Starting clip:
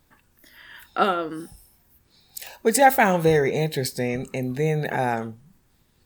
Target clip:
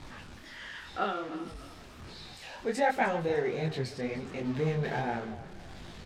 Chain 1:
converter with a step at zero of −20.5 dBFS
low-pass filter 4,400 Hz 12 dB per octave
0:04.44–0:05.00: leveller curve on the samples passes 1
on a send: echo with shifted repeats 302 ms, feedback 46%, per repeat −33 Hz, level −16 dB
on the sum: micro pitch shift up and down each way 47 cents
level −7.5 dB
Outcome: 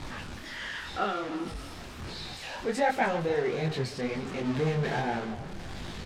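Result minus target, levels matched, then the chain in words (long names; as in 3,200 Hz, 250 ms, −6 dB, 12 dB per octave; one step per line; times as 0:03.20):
converter with a step at zero: distortion +6 dB
converter with a step at zero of −28 dBFS
low-pass filter 4,400 Hz 12 dB per octave
0:04.44–0:05.00: leveller curve on the samples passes 1
on a send: echo with shifted repeats 302 ms, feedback 46%, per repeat −33 Hz, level −16 dB
on the sum: micro pitch shift up and down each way 47 cents
level −7.5 dB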